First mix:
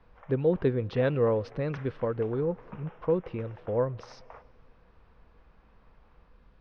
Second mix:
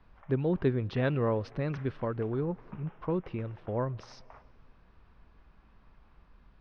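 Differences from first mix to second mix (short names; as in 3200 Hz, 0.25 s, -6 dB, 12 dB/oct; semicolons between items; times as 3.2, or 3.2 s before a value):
background -4.0 dB; master: add bell 490 Hz -10 dB 0.26 oct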